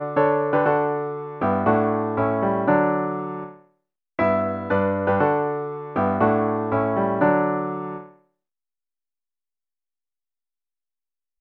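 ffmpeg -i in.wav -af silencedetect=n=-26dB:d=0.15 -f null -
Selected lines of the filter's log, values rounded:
silence_start: 3.44
silence_end: 4.19 | silence_duration: 0.75
silence_start: 7.97
silence_end: 11.40 | silence_duration: 3.43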